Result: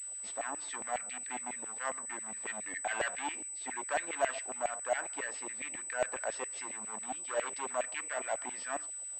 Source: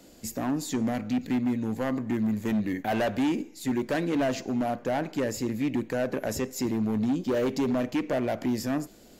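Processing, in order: LFO high-pass saw down 7.3 Hz 640–2300 Hz; class-D stage that switches slowly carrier 8 kHz; trim -5 dB

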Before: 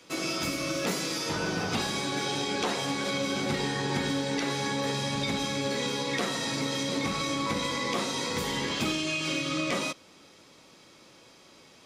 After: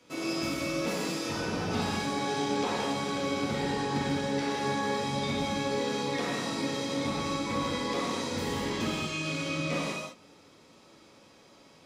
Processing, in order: tilt shelf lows +3 dB, about 1.3 kHz; gated-style reverb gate 230 ms flat, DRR -3.5 dB; trim -7 dB

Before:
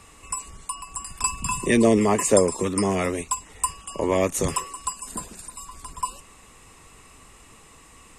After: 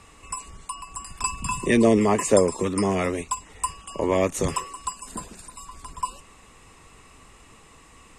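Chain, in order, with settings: treble shelf 10 kHz -11.5 dB

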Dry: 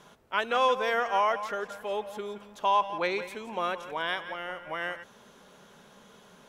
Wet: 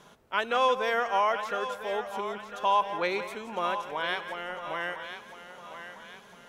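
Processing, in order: thinning echo 1003 ms, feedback 46%, high-pass 420 Hz, level -10 dB

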